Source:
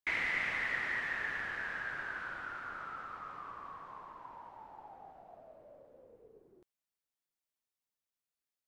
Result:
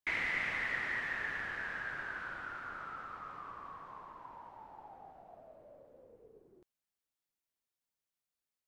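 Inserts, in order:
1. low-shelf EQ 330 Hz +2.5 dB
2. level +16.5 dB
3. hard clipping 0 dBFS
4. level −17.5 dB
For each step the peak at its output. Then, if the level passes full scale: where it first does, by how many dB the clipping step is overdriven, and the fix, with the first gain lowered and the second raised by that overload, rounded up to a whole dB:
−22.0, −5.5, −5.5, −23.0 dBFS
no step passes full scale

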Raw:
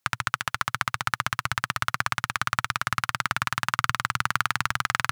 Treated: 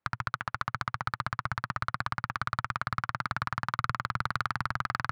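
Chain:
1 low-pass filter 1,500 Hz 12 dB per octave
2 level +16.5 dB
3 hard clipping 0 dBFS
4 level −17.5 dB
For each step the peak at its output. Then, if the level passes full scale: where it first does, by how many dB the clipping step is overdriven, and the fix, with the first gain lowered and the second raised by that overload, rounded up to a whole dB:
−9.0, +7.5, 0.0, −17.5 dBFS
step 2, 7.5 dB
step 2 +8.5 dB, step 4 −9.5 dB

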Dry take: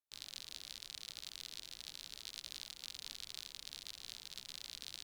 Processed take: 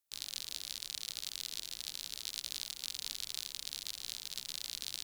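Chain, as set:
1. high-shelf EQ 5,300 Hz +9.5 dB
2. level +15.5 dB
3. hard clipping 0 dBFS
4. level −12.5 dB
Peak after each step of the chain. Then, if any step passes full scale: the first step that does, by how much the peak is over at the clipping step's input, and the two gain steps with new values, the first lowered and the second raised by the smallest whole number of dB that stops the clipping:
−21.0, −5.5, −5.5, −18.0 dBFS
no step passes full scale

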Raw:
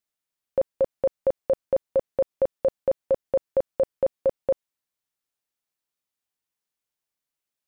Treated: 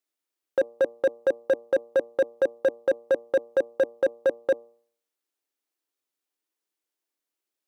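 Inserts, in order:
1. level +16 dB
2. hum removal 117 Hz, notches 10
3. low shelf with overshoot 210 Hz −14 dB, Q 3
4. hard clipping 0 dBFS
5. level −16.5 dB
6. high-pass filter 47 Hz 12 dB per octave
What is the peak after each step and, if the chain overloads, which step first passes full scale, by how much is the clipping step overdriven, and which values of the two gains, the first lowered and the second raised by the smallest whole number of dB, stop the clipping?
+1.0, +1.0, +5.0, 0.0, −16.5, −15.5 dBFS
step 1, 5.0 dB
step 1 +11 dB, step 5 −11.5 dB

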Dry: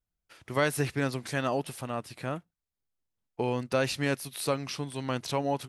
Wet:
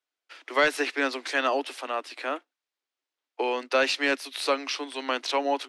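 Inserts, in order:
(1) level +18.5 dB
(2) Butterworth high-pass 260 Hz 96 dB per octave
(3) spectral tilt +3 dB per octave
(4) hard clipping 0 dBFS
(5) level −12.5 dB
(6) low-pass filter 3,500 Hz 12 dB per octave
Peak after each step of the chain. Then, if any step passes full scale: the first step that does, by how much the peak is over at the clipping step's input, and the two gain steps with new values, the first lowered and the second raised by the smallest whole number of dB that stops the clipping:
+6.5, +4.5, +7.0, 0.0, −12.5, −12.0 dBFS
step 1, 7.0 dB
step 1 +11.5 dB, step 5 −5.5 dB

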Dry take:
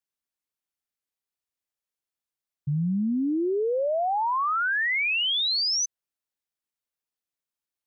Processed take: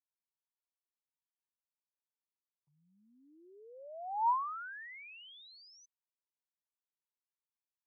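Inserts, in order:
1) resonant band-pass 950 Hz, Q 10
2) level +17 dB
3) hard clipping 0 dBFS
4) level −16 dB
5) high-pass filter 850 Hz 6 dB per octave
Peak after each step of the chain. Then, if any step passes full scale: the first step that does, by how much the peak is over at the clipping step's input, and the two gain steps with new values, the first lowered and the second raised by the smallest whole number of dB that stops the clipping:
−22.0, −5.0, −5.0, −21.0, −23.5 dBFS
no step passes full scale

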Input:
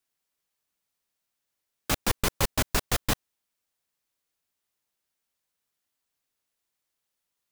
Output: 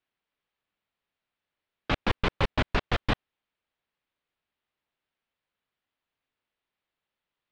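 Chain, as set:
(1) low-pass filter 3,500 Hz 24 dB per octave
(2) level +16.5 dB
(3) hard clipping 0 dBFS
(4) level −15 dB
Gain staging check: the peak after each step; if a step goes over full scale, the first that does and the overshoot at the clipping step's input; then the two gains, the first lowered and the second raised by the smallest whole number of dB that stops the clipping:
−11.0, +5.5, 0.0, −15.0 dBFS
step 2, 5.5 dB
step 2 +10.5 dB, step 4 −9 dB

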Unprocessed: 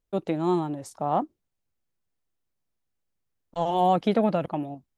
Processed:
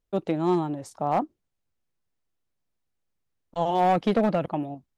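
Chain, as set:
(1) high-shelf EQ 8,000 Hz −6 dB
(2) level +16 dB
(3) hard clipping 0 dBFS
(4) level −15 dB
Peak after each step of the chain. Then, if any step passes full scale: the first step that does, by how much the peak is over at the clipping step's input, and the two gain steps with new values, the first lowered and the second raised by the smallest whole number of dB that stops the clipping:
−11.0, +5.0, 0.0, −15.0 dBFS
step 2, 5.0 dB
step 2 +11 dB, step 4 −10 dB

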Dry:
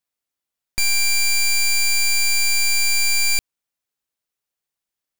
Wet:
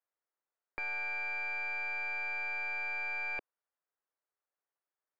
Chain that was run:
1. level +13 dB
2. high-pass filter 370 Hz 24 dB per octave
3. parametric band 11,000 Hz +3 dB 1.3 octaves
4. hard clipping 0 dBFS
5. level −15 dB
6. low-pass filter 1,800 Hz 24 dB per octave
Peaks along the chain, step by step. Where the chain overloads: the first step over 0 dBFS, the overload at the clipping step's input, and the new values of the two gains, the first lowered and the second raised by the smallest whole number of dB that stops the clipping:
−4.0, +2.0, +3.5, 0.0, −15.0, −25.0 dBFS
step 2, 3.5 dB
step 1 +9 dB, step 5 −11 dB

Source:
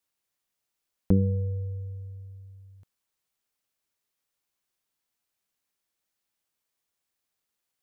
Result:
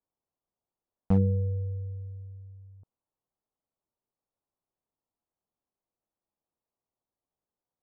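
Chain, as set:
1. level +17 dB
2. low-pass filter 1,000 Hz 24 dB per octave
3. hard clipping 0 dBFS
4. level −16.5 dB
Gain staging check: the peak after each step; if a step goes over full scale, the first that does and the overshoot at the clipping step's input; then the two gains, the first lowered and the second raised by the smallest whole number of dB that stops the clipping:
+7.5, +7.5, 0.0, −16.5 dBFS
step 1, 7.5 dB
step 1 +9 dB, step 4 −8.5 dB

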